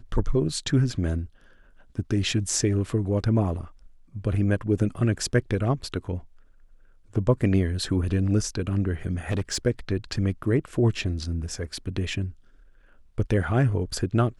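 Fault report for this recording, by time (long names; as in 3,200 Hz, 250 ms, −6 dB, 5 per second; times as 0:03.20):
0:09.31–0:09.57: clipping −21 dBFS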